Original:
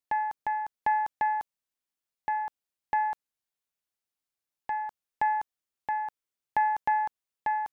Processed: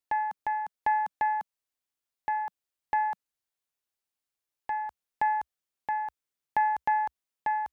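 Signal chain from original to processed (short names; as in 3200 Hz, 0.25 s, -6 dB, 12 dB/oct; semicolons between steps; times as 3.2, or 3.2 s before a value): bell 190 Hz -11.5 dB 0.26 oct, from 4.86 s 66 Hz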